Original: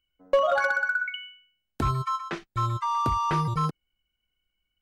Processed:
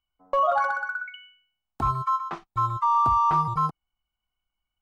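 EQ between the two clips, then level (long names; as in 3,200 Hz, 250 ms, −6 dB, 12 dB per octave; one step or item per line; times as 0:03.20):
low-shelf EQ 220 Hz +5.5 dB
flat-topped bell 940 Hz +13.5 dB 1.1 octaves
−8.0 dB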